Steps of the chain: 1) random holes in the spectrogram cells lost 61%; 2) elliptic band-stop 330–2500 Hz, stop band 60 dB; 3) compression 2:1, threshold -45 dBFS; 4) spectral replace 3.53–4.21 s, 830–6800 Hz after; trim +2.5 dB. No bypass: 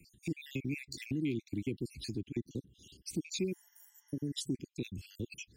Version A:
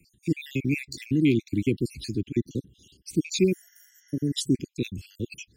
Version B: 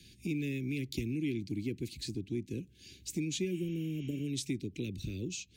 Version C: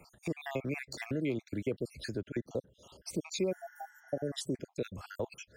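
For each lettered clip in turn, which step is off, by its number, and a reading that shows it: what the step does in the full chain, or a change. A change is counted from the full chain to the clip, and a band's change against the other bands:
3, mean gain reduction 8.5 dB; 1, 125 Hz band +1.5 dB; 2, 500 Hz band +7.5 dB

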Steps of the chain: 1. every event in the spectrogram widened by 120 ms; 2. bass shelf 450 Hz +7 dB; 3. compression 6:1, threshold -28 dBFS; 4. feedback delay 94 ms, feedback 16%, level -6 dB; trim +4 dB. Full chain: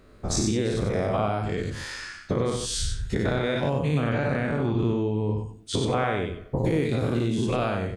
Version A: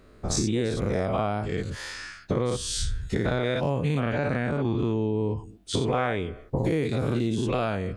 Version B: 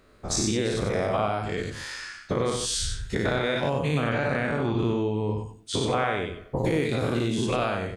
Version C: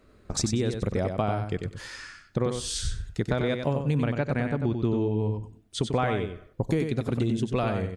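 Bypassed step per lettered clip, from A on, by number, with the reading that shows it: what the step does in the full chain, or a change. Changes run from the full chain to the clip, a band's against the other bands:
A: 4, crest factor change +1.5 dB; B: 2, 125 Hz band -4.5 dB; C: 1, crest factor change +2.5 dB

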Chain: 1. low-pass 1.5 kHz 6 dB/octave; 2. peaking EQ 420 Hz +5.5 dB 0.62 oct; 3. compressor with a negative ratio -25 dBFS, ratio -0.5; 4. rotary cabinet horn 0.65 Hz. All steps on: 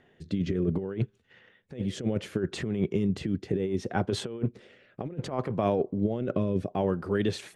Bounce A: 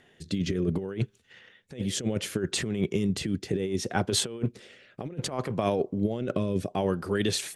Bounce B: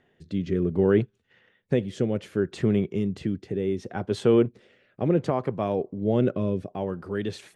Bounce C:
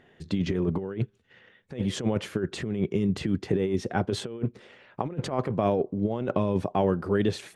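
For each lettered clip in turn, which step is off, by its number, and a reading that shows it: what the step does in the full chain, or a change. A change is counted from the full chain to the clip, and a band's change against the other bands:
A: 1, 8 kHz band +13.5 dB; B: 3, momentary loudness spread change +3 LU; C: 4, 1 kHz band +1.5 dB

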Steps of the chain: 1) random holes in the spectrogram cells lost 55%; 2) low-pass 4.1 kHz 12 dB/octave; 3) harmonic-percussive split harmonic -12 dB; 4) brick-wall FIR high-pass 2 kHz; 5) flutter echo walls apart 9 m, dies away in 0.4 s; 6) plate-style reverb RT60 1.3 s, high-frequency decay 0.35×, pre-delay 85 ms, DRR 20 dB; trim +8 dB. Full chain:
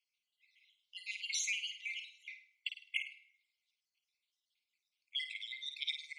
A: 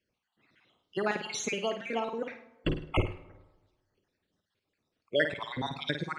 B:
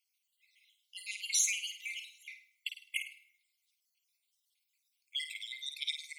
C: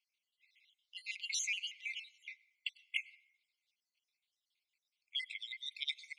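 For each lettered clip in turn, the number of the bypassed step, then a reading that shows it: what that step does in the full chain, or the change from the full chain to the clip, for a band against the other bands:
4, crest factor change -2.5 dB; 2, momentary loudness spread change +5 LU; 5, echo-to-direct -7.0 dB to -20.0 dB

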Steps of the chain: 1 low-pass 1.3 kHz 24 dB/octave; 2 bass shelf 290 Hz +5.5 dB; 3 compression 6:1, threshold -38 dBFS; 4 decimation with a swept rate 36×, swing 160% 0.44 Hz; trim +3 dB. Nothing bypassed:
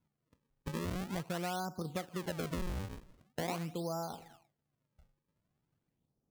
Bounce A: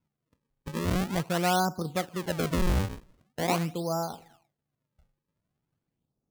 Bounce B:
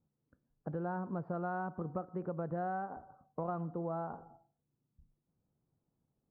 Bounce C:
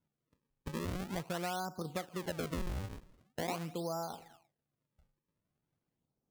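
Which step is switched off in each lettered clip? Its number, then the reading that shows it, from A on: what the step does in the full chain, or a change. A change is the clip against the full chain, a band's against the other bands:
3, mean gain reduction 7.5 dB; 4, 1 kHz band +3.5 dB; 2, 125 Hz band -1.5 dB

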